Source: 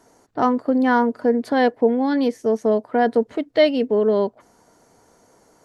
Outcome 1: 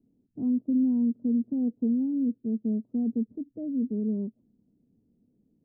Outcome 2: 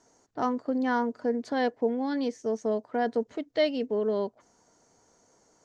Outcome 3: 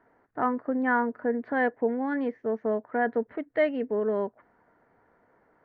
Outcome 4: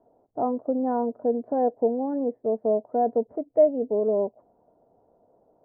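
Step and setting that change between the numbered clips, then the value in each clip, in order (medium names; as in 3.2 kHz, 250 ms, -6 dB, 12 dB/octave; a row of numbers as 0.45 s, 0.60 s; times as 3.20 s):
four-pole ladder low-pass, frequency: 270 Hz, 7.6 kHz, 2.1 kHz, 780 Hz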